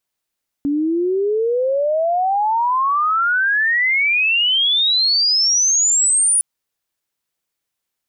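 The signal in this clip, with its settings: chirp logarithmic 280 Hz -> 9800 Hz -15.5 dBFS -> -12 dBFS 5.76 s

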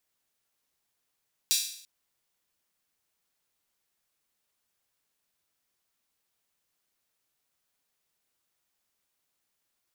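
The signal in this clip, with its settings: open hi-hat length 0.34 s, high-pass 4000 Hz, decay 0.62 s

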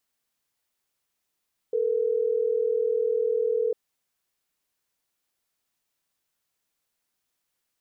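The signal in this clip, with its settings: call progress tone ringback tone, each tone -24.5 dBFS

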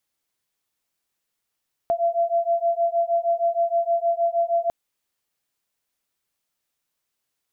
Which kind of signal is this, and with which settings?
beating tones 677 Hz, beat 6.4 Hz, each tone -22 dBFS 2.80 s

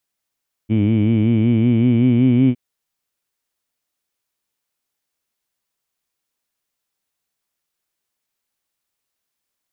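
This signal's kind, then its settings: formant-synthesis vowel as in heed, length 1.86 s, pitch 105 Hz, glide +3.5 st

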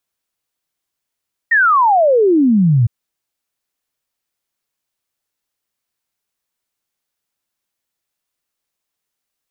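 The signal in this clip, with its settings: log sweep 1900 Hz -> 110 Hz 1.36 s -8.5 dBFS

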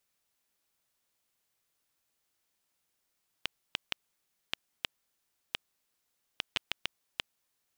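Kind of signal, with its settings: random clicks 2.5/s -11.5 dBFS 4.73 s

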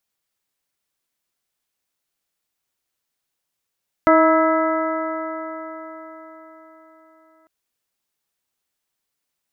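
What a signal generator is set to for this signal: stretched partials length 3.40 s, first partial 318 Hz, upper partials 2/-5/0/-11.5/-9.5 dB, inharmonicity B 0.0029, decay 4.54 s, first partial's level -15 dB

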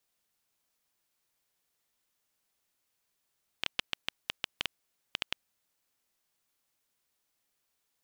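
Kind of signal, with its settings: random clicks 6.5/s -11.5 dBFS 1.93 s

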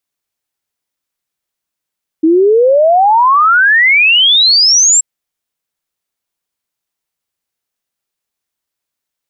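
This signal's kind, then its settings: log sweep 310 Hz -> 7700 Hz 2.78 s -5 dBFS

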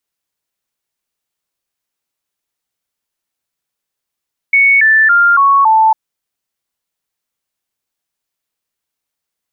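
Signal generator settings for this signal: stepped sine 2220 Hz down, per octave 3, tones 5, 0.28 s, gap 0.00 s -5.5 dBFS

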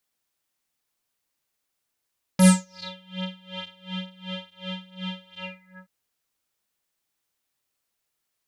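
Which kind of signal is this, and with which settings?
synth patch with tremolo F#3, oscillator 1 square, oscillator 2 square, interval 0 st, detune 11 cents, oscillator 2 level -2 dB, sub -24.5 dB, noise -28 dB, filter lowpass, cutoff 1400 Hz, Q 11, filter envelope 3 oct, filter decay 0.56 s, attack 5.3 ms, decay 0.26 s, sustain -21 dB, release 0.50 s, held 2.98 s, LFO 2.7 Hz, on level 23 dB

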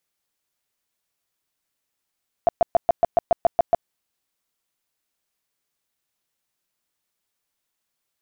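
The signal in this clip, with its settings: tone bursts 682 Hz, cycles 12, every 0.14 s, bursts 10, -11.5 dBFS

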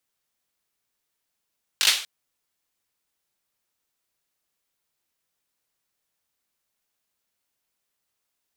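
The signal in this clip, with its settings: hand clap length 0.24 s, bursts 4, apart 20 ms, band 3300 Hz, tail 0.43 s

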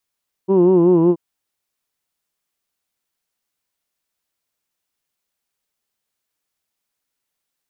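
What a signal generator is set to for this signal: formant vowel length 0.68 s, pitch 187 Hz, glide -2 st, F1 360 Hz, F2 980 Hz, F3 2800 Hz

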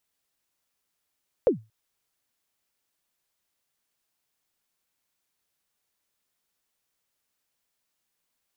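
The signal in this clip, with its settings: kick drum length 0.23 s, from 560 Hz, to 110 Hz, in 0.116 s, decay 0.25 s, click off, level -12 dB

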